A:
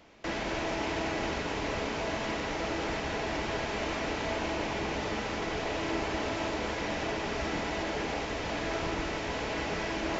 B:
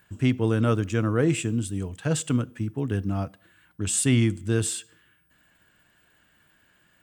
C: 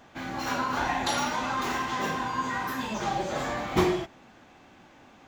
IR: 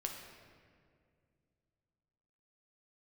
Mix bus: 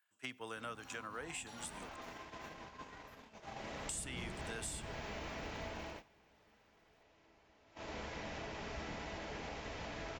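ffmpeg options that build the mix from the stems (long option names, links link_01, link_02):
-filter_complex "[0:a]adelay=1350,volume=2dB,afade=type=in:start_time=3.48:duration=0.54:silence=0.398107,afade=type=out:start_time=5.69:duration=0.39:silence=0.298538,afade=type=in:start_time=7.64:duration=0.34:silence=0.334965[link_01];[1:a]highpass=840,volume=-2dB,asplit=3[link_02][link_03][link_04];[link_02]atrim=end=1.96,asetpts=PTS-STARTPTS,afade=type=out:start_time=1.956:duration=0.004:curve=hsin[link_05];[link_03]atrim=start=1.96:end=3.89,asetpts=PTS-STARTPTS,volume=0[link_06];[link_04]atrim=start=3.89,asetpts=PTS-STARTPTS,afade=type=in:duration=0.004:curve=hsin[link_07];[link_05][link_06][link_07]concat=n=3:v=0:a=1[link_08];[2:a]adelay=400,volume=-19dB[link_09];[link_01][link_08][link_09]amix=inputs=3:normalize=0,agate=range=-17dB:threshold=-44dB:ratio=16:detection=peak,equalizer=frequency=330:width=2:gain=-4.5,acrossover=split=220[link_10][link_11];[link_11]acompressor=threshold=-43dB:ratio=5[link_12];[link_10][link_12]amix=inputs=2:normalize=0"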